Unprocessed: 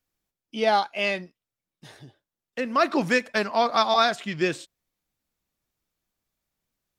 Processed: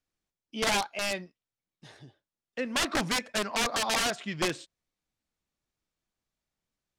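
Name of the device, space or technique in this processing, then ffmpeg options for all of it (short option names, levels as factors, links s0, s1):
overflowing digital effects unit: -af "aeval=exprs='(mod(6.68*val(0)+1,2)-1)/6.68':c=same,lowpass=8500,volume=0.631"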